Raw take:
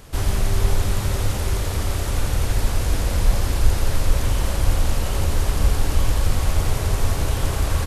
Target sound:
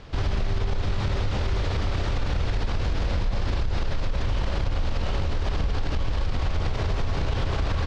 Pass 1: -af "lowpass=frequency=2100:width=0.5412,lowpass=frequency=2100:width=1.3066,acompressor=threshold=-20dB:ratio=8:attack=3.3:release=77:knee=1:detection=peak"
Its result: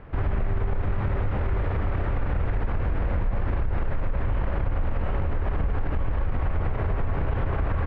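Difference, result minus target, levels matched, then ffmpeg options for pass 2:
4,000 Hz band −16.0 dB
-af "lowpass=frequency=4800:width=0.5412,lowpass=frequency=4800:width=1.3066,acompressor=threshold=-20dB:ratio=8:attack=3.3:release=77:knee=1:detection=peak"

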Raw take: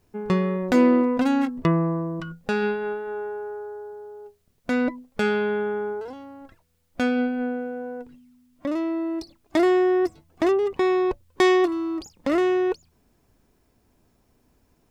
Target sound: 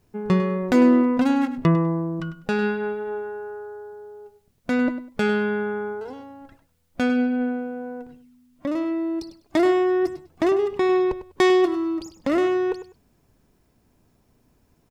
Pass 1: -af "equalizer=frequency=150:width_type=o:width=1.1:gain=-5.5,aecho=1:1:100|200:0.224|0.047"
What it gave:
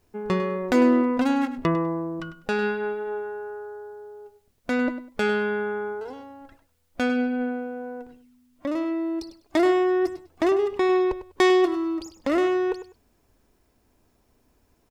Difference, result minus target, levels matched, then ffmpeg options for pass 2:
125 Hz band −6.0 dB
-af "equalizer=frequency=150:width_type=o:width=1.1:gain=4,aecho=1:1:100|200:0.224|0.047"

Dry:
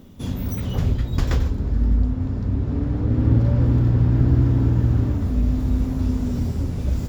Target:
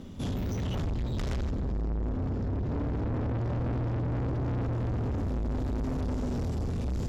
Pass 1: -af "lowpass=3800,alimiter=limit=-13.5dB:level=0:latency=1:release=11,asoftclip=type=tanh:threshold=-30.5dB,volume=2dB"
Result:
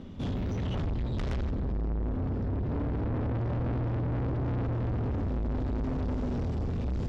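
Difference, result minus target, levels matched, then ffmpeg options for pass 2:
8,000 Hz band −9.0 dB
-af "lowpass=9800,alimiter=limit=-13.5dB:level=0:latency=1:release=11,asoftclip=type=tanh:threshold=-30.5dB,volume=2dB"

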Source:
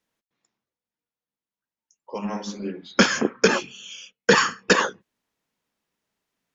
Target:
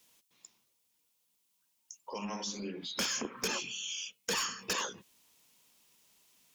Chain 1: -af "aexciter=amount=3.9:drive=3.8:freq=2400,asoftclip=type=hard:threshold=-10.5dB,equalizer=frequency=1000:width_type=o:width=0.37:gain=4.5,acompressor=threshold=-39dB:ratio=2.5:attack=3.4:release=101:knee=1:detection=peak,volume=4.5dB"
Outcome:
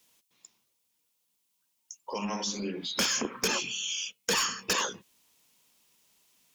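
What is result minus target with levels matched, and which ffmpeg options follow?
downward compressor: peak gain reduction −5.5 dB
-af "aexciter=amount=3.9:drive=3.8:freq=2400,asoftclip=type=hard:threshold=-10.5dB,equalizer=frequency=1000:width_type=o:width=0.37:gain=4.5,acompressor=threshold=-48.5dB:ratio=2.5:attack=3.4:release=101:knee=1:detection=peak,volume=4.5dB"

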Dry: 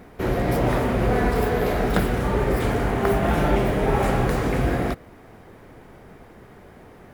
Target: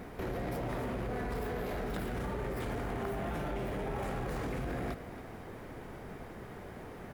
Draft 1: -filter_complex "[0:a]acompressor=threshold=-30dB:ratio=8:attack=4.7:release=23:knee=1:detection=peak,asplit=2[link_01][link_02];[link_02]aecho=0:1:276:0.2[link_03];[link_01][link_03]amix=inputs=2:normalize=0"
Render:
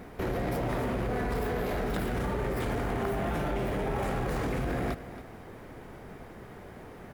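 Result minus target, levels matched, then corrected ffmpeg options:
downward compressor: peak gain reduction −5.5 dB
-filter_complex "[0:a]acompressor=threshold=-36.5dB:ratio=8:attack=4.7:release=23:knee=1:detection=peak,asplit=2[link_01][link_02];[link_02]aecho=0:1:276:0.2[link_03];[link_01][link_03]amix=inputs=2:normalize=0"

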